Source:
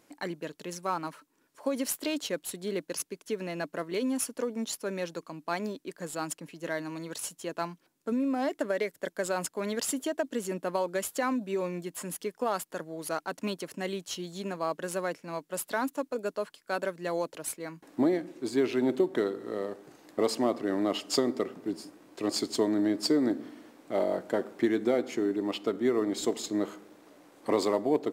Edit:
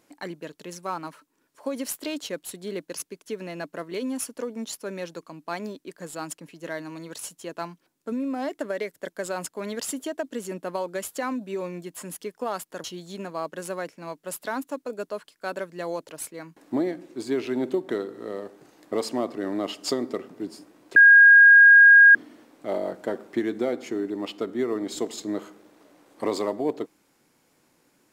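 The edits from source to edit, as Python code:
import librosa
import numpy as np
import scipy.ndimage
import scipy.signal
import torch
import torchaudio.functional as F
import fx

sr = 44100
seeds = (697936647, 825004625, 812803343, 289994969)

y = fx.edit(x, sr, fx.cut(start_s=12.84, length_s=1.26),
    fx.bleep(start_s=22.22, length_s=1.19, hz=1630.0, db=-8.5), tone=tone)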